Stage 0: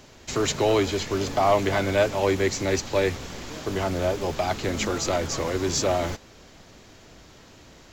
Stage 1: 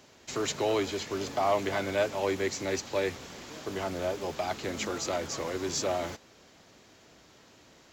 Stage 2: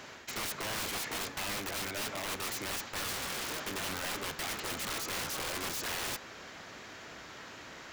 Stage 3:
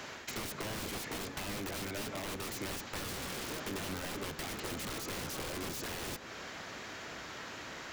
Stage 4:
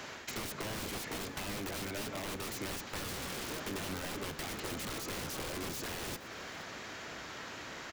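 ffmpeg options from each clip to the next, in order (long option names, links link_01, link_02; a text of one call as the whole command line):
ffmpeg -i in.wav -af "highpass=frequency=180:poles=1,volume=-6dB" out.wav
ffmpeg -i in.wav -af "equalizer=frequency=1600:width=0.72:gain=9.5,areverse,acompressor=threshold=-36dB:ratio=8,areverse,aeval=exprs='(mod(63.1*val(0)+1,2)-1)/63.1':channel_layout=same,volume=5dB" out.wav
ffmpeg -i in.wav -filter_complex "[0:a]acrossover=split=490[link_01][link_02];[link_02]acompressor=threshold=-42dB:ratio=6[link_03];[link_01][link_03]amix=inputs=2:normalize=0,volume=3dB" out.wav
ffmpeg -i in.wav -af "aecho=1:1:470:0.1" out.wav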